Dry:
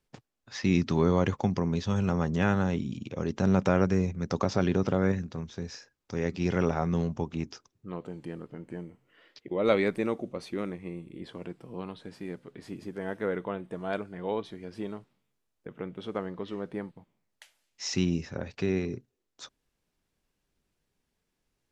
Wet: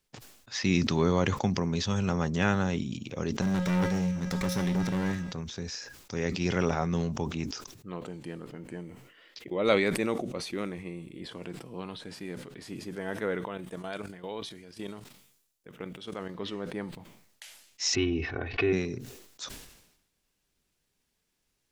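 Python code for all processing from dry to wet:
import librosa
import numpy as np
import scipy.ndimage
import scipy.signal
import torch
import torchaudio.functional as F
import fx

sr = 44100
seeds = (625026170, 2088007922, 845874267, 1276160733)

y = fx.chain(x, sr, fx.lower_of_two(delay_ms=0.53),
    fx.comb_fb(f0_hz=180.0, decay_s=0.72, harmonics='odd', damping=0.0, mix_pct=80),
    fx.leveller(passes=3), at=(3.41, 5.32))
y = fx.chain(y, sr, fx.high_shelf(hz=4100.0, db=8.5),
    fx.level_steps(step_db=12), at=(13.45, 16.35))
y = fx.chain(y, sr, fx.lowpass(hz=3000.0, slope=24),
    fx.comb(ms=2.7, depth=0.95),
    fx.pre_swell(db_per_s=140.0), at=(17.95, 18.73))
y = fx.high_shelf(y, sr, hz=2100.0, db=8.5)
y = fx.sustainer(y, sr, db_per_s=63.0)
y = y * librosa.db_to_amplitude(-1.5)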